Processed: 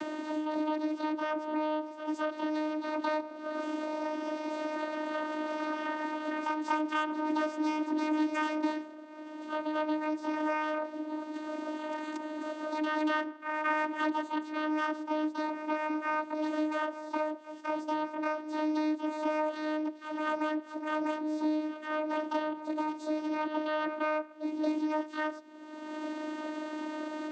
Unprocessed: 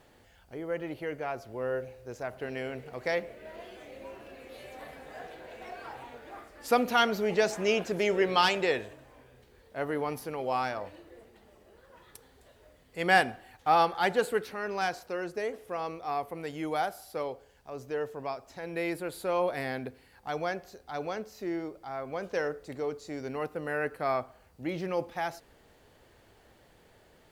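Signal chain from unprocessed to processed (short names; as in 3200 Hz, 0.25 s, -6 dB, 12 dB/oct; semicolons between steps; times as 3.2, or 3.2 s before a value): reverse echo 0.23 s -12.5 dB; harmoniser +12 st -2 dB; vocoder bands 16, saw 307 Hz; three-band squash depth 100%; gain -2 dB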